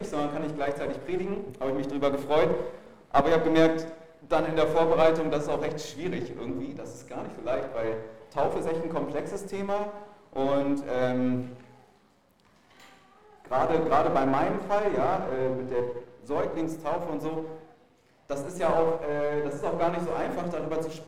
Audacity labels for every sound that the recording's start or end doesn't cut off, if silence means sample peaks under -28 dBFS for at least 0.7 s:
13.510000	17.460000	sound